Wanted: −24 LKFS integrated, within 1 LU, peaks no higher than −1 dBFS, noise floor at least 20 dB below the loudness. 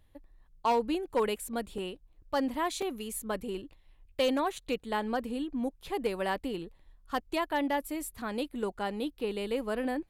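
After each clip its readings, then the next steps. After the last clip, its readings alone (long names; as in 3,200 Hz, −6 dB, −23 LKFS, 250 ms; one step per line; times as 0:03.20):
share of clipped samples 0.2%; peaks flattened at −21.0 dBFS; number of dropouts 3; longest dropout 3.7 ms; integrated loudness −33.0 LKFS; sample peak −21.0 dBFS; target loudness −24.0 LKFS
→ clipped peaks rebuilt −21 dBFS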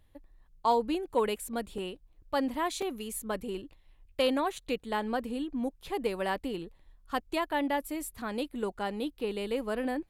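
share of clipped samples 0.0%; number of dropouts 3; longest dropout 3.7 ms
→ repair the gap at 0:01.78/0:02.82/0:04.58, 3.7 ms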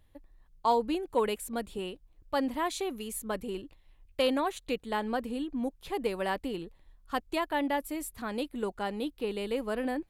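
number of dropouts 0; integrated loudness −33.0 LKFS; sample peak −15.0 dBFS; target loudness −24.0 LKFS
→ level +9 dB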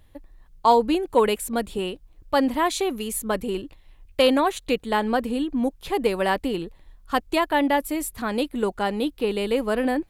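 integrated loudness −24.0 LKFS; sample peak −6.0 dBFS; background noise floor −54 dBFS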